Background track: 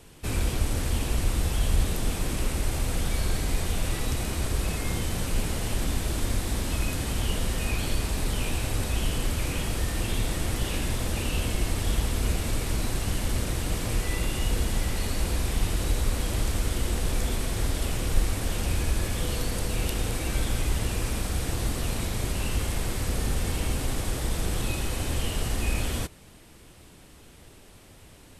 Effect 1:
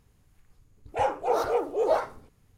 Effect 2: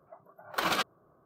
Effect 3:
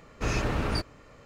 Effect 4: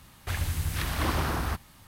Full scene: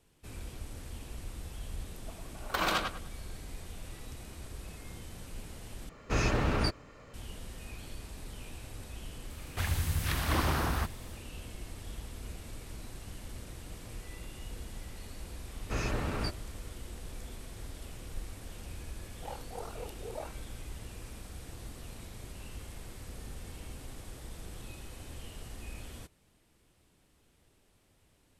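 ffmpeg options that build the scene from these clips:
-filter_complex "[3:a]asplit=2[s0][s1];[0:a]volume=0.141[s2];[2:a]asplit=2[s3][s4];[s4]adelay=101,lowpass=f=3300:p=1,volume=0.668,asplit=2[s5][s6];[s6]adelay=101,lowpass=f=3300:p=1,volume=0.28,asplit=2[s7][s8];[s8]adelay=101,lowpass=f=3300:p=1,volume=0.28,asplit=2[s9][s10];[s10]adelay=101,lowpass=f=3300:p=1,volume=0.28[s11];[s3][s5][s7][s9][s11]amix=inputs=5:normalize=0[s12];[1:a]aeval=exprs='val(0)*sin(2*PI*20*n/s)':c=same[s13];[s2]asplit=2[s14][s15];[s14]atrim=end=5.894[s16];[s0]atrim=end=1.25,asetpts=PTS-STARTPTS,volume=0.944[s17];[s15]atrim=start=7.136[s18];[s12]atrim=end=1.25,asetpts=PTS-STARTPTS,volume=0.794,afade=t=in:d=0.004:c=hsin,afade=t=out:st=1.246:d=0.004:c=hsin,adelay=1960[s19];[4:a]atrim=end=1.87,asetpts=PTS-STARTPTS,volume=0.841,afade=t=in:d=0.004:c=hsin,afade=t=out:st=1.866:d=0.004:c=hsin,adelay=410130S[s20];[s1]atrim=end=1.25,asetpts=PTS-STARTPTS,volume=0.531,afade=t=in:d=0.004:c=hsin,afade=t=out:st=1.246:d=0.004:c=hsin,adelay=15490[s21];[s13]atrim=end=2.57,asetpts=PTS-STARTPTS,volume=0.168,afade=t=in:d=0.004:c=hsin,afade=t=out:st=2.566:d=0.004:c=hsin,adelay=18270[s22];[s16][s17]acrossfade=d=0.004:c1=hsin:c2=hsin[s23];[s23][s18]acrossfade=d=0.004:c1=hsin:c2=hsin[s24];[s24][s19][s20][s21][s22]amix=inputs=5:normalize=0"

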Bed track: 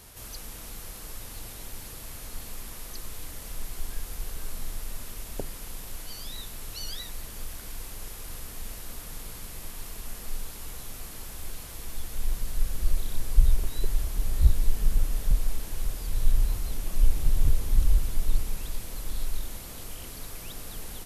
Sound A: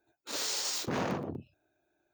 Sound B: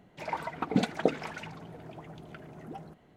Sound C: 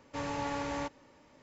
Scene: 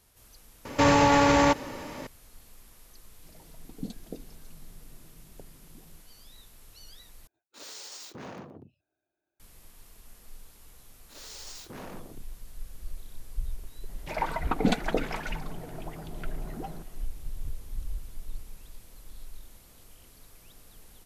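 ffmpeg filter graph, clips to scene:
-filter_complex "[2:a]asplit=2[s0][s1];[1:a]asplit=2[s2][s3];[0:a]volume=0.2[s4];[3:a]alimiter=level_in=37.6:limit=0.891:release=50:level=0:latency=1[s5];[s0]firequalizer=gain_entry='entry(220,0);entry(1200,-28);entry(4200,0)':delay=0.05:min_phase=1[s6];[s3]dynaudnorm=f=260:g=3:m=1.68[s7];[s1]alimiter=level_in=5.31:limit=0.891:release=50:level=0:latency=1[s8];[s4]asplit=2[s9][s10];[s9]atrim=end=7.274[s11];[s2]atrim=end=2.13,asetpts=PTS-STARTPTS,volume=0.316[s12];[s10]atrim=start=9.396[s13];[s5]atrim=end=1.42,asetpts=PTS-STARTPTS,volume=0.299,afade=t=in:d=0.004:c=hsin,afade=t=out:st=1.416:d=0.004:c=hsin,adelay=650[s14];[s6]atrim=end=3.16,asetpts=PTS-STARTPTS,volume=0.316,afade=t=in:d=0.004:c=hsin,afade=t=out:st=3.156:d=0.004:c=hsin,adelay=3070[s15];[s7]atrim=end=2.13,asetpts=PTS-STARTPTS,volume=0.178,afade=t=in:d=0.004:c=hsin,afade=t=out:st=2.126:d=0.004:c=hsin,adelay=477162S[s16];[s8]atrim=end=3.16,asetpts=PTS-STARTPTS,volume=0.299,afade=t=in:d=0.004:c=hsin,afade=t=out:st=3.156:d=0.004:c=hsin,adelay=13890[s17];[s11][s12]acrossfade=d=0.004:c1=hsin:c2=hsin[s18];[s18][s13]acrossfade=d=0.004:c1=hsin:c2=hsin[s19];[s19][s14][s15][s16][s17]amix=inputs=5:normalize=0"

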